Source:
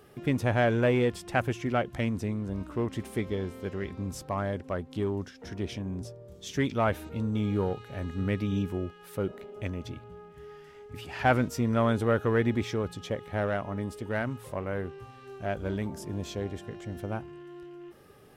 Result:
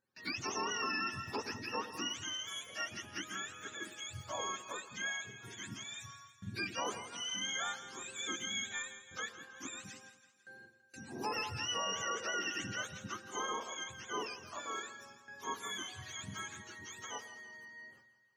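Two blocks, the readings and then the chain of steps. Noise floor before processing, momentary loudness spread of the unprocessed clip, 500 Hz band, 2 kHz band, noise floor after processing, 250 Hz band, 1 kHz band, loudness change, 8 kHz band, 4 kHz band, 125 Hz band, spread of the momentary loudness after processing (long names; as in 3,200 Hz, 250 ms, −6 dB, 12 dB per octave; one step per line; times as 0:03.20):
−52 dBFS, 19 LU, −16.5 dB, −3.5 dB, −66 dBFS, −18.0 dB, −6.5 dB, −9.0 dB, +7.5 dB, +5.5 dB, −21.5 dB, 14 LU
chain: frequency axis turned over on the octave scale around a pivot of 810 Hz
noise gate with hold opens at −39 dBFS
low-shelf EQ 120 Hz −11.5 dB
echo with a time of its own for lows and highs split 850 Hz, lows 101 ms, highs 166 ms, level −13 dB
brickwall limiter −21.5 dBFS, peak gain reduction 10.5 dB
level −6 dB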